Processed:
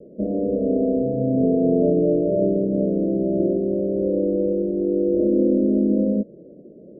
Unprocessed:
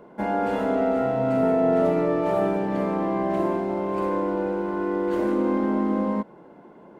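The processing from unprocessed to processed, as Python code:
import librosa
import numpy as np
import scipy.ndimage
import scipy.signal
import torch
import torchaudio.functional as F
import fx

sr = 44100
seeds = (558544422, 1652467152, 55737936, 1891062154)

y = scipy.signal.sosfilt(scipy.signal.butter(16, 610.0, 'lowpass', fs=sr, output='sos'), x)
y = F.gain(torch.from_numpy(y), 5.0).numpy()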